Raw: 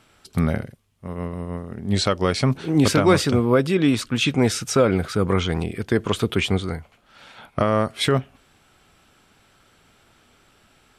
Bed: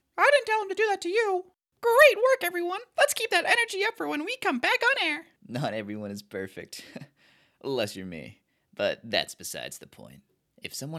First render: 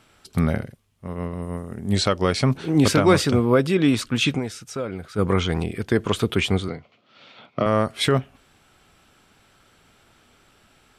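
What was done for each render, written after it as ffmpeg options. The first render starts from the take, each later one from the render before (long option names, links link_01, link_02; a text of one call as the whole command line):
ffmpeg -i in.wav -filter_complex "[0:a]asettb=1/sr,asplit=3[link_01][link_02][link_03];[link_01]atrim=end=1.424[link_04];[link_02]atrim=start=1.42:end=1.96,asetpts=PTS-STARTPTS,afade=type=in:duration=0.004:curve=qsin,afade=type=out:start_time=0.536:duration=0.004:curve=qsin,highshelf=frequency=6000:width_type=q:width=1.5:gain=7[link_05];[link_03]atrim=start=1.956[link_06];[link_04][link_05]acrossfade=duration=0.004:curve1=hsin:curve2=qsin[link_07];[link_07][link_06]acrossfade=duration=0.004:curve1=qsin:curve2=hsin,asettb=1/sr,asplit=3[link_08][link_09][link_10];[link_08]atrim=end=6.684[link_11];[link_09]atrim=start=6.68:end=7.66,asetpts=PTS-STARTPTS,afade=type=in:duration=0.004:curve=qsin,afade=type=out:start_time=0.976:duration=0.004:curve=qsin,highpass=frequency=120:width=0.5412,highpass=frequency=120:width=1.3066,equalizer=frequency=170:width_type=q:width=4:gain=-4,equalizer=frequency=870:width_type=q:width=4:gain=-8,equalizer=frequency=1600:width_type=q:width=4:gain=-10,lowpass=frequency=5000:width=0.5412,lowpass=frequency=5000:width=1.3066[link_12];[link_10]atrim=start=7.656[link_13];[link_11][link_12]acrossfade=duration=0.004:curve1=hsin:curve2=qsin[link_14];[link_14][link_13]acrossfade=duration=0.004:curve1=qsin:curve2=hsin,asplit=3[link_15][link_16][link_17];[link_15]atrim=end=4.57,asetpts=PTS-STARTPTS,afade=type=out:start_time=4.37:duration=0.2:curve=exp:silence=0.266073[link_18];[link_16]atrim=start=4.57:end=4.99,asetpts=PTS-STARTPTS,volume=-11.5dB[link_19];[link_17]atrim=start=4.99,asetpts=PTS-STARTPTS,afade=type=in:duration=0.2:curve=exp:silence=0.266073[link_20];[link_18][link_19][link_20]concat=n=3:v=0:a=1" out.wav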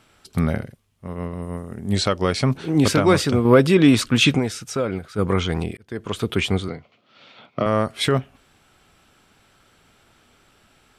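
ffmpeg -i in.wav -filter_complex "[0:a]asettb=1/sr,asplit=3[link_01][link_02][link_03];[link_01]atrim=end=3.454[link_04];[link_02]atrim=start=3.45:end=4.99,asetpts=PTS-STARTPTS,afade=type=in:duration=0.004:curve=qsin,afade=type=out:start_time=1.536:duration=0.004:curve=qsin,acontrast=32[link_05];[link_03]atrim=start=4.986[link_06];[link_04][link_05]acrossfade=duration=0.004:curve1=hsin:curve2=qsin[link_07];[link_07][link_06]acrossfade=duration=0.004:curve1=qsin:curve2=hsin,asplit=2[link_08][link_09];[link_08]atrim=end=5.77,asetpts=PTS-STARTPTS,afade=type=out:start_time=5.766:duration=0.004:curve=hsin[link_10];[link_09]atrim=start=5.77,asetpts=PTS-STARTPTS,afade=type=in:duration=0.59[link_11];[link_10][link_11]concat=n=2:v=0:a=1" out.wav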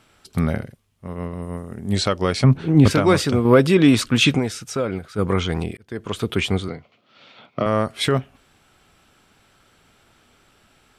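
ffmpeg -i in.wav -filter_complex "[0:a]asettb=1/sr,asplit=3[link_01][link_02][link_03];[link_01]atrim=end=2.444[link_04];[link_02]atrim=start=2.44:end=2.91,asetpts=PTS-STARTPTS,afade=type=in:duration=0.004:curve=qsin,afade=type=out:start_time=0.466:duration=0.004:curve=qsin,bass=frequency=250:gain=8,treble=frequency=4000:gain=-9[link_05];[link_03]atrim=start=2.906[link_06];[link_04][link_05]acrossfade=duration=0.004:curve1=hsin:curve2=qsin[link_07];[link_07][link_06]acrossfade=duration=0.004:curve1=qsin:curve2=hsin" out.wav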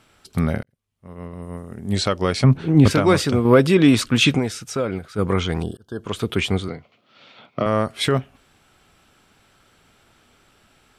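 ffmpeg -i in.wav -filter_complex "[0:a]asettb=1/sr,asplit=3[link_01][link_02][link_03];[link_01]atrim=end=5.624[link_04];[link_02]atrim=start=5.62:end=6.03,asetpts=PTS-STARTPTS,afade=type=in:duration=0.004:curve=qsin,afade=type=out:start_time=0.406:duration=0.004:curve=qsin,asuperstop=centerf=2200:order=20:qfactor=1.9[link_05];[link_03]atrim=start=6.026[link_06];[link_04][link_05]acrossfade=duration=0.004:curve1=hsin:curve2=qsin[link_07];[link_07][link_06]acrossfade=duration=0.004:curve1=qsin:curve2=hsin,asplit=2[link_08][link_09];[link_08]atrim=end=0.63,asetpts=PTS-STARTPTS,afade=type=out:start_time=0.626:duration=0.004:curve=hsin[link_10];[link_09]atrim=start=0.63,asetpts=PTS-STARTPTS,afade=type=in:duration=1.76:curve=qsin[link_11];[link_10][link_11]concat=n=2:v=0:a=1" out.wav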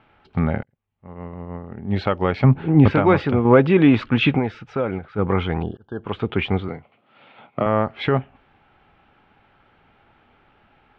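ffmpeg -i in.wav -af "lowpass=frequency=2800:width=0.5412,lowpass=frequency=2800:width=1.3066,equalizer=frequency=830:width=6.1:gain=9" out.wav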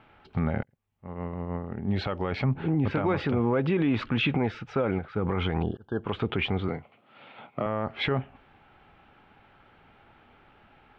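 ffmpeg -i in.wav -af "acompressor=threshold=-17dB:ratio=6,alimiter=limit=-17.5dB:level=0:latency=1:release=36" out.wav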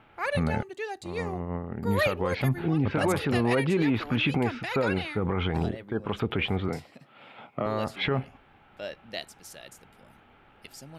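ffmpeg -i in.wav -i bed.wav -filter_complex "[1:a]volume=-10dB[link_01];[0:a][link_01]amix=inputs=2:normalize=0" out.wav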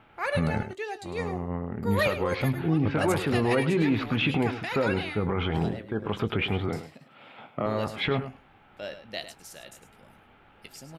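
ffmpeg -i in.wav -filter_complex "[0:a]asplit=2[link_01][link_02];[link_02]adelay=19,volume=-13dB[link_03];[link_01][link_03]amix=inputs=2:normalize=0,aecho=1:1:104:0.266" out.wav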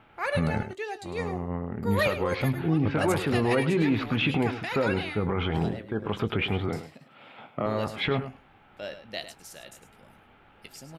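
ffmpeg -i in.wav -af anull out.wav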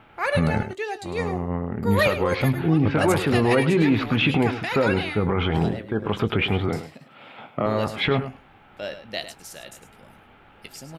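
ffmpeg -i in.wav -af "volume=5dB" out.wav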